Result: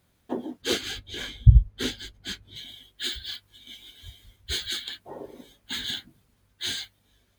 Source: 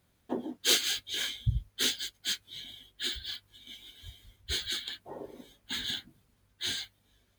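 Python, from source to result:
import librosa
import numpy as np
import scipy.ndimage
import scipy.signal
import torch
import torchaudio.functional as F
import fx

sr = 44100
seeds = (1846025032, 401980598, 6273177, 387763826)

y = fx.tilt_eq(x, sr, slope=-3.5, at=(0.61, 2.55), fade=0.02)
y = F.gain(torch.from_numpy(y), 3.0).numpy()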